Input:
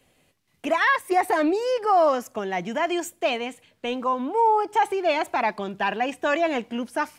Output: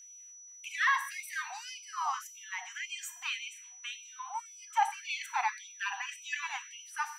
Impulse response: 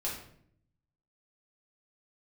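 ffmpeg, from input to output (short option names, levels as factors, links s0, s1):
-filter_complex "[0:a]aeval=exprs='val(0)+0.00708*sin(2*PI*5900*n/s)':c=same,asplit=2[s0][s1];[1:a]atrim=start_sample=2205,asetrate=33516,aresample=44100[s2];[s1][s2]afir=irnorm=-1:irlink=0,volume=0.316[s3];[s0][s3]amix=inputs=2:normalize=0,afftfilt=real='re*gte(b*sr/1024,720*pow(2200/720,0.5+0.5*sin(2*PI*1.8*pts/sr)))':imag='im*gte(b*sr/1024,720*pow(2200/720,0.5+0.5*sin(2*PI*1.8*pts/sr)))':win_size=1024:overlap=0.75,volume=0.376"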